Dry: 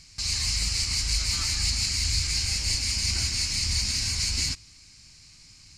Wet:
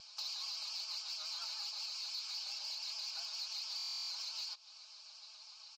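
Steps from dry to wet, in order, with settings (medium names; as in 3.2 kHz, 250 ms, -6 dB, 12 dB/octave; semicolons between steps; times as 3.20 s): steep high-pass 620 Hz 48 dB/octave; comb 4.7 ms, depth 97%; vibrato 7.2 Hz 78 cents; static phaser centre 820 Hz, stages 4; compression 10:1, threshold -36 dBFS, peak gain reduction 14 dB; low-pass 4.5 kHz 24 dB/octave; harmony voices +3 st -17 dB; saturation -33.5 dBFS, distortion -25 dB; buffer glitch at 3.77 s, samples 1024, times 13; trim +2.5 dB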